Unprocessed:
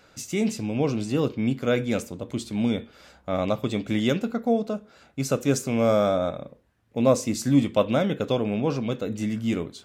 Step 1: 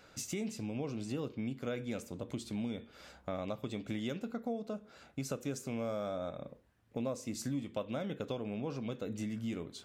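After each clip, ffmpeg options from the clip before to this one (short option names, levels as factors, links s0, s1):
-af "acompressor=threshold=0.0224:ratio=4,volume=0.668"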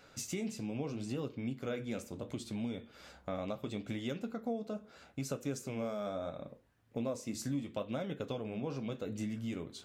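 -af "flanger=delay=7:depth=7.7:regen=-59:speed=0.74:shape=sinusoidal,volume=1.58"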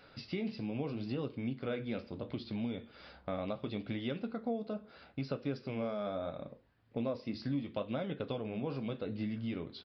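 -af "aresample=11025,aresample=44100,volume=1.12"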